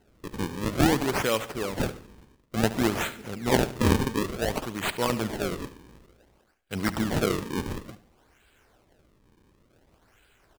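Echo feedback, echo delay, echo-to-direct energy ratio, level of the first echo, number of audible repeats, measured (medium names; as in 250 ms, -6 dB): 38%, 72 ms, -14.5 dB, -15.0 dB, 3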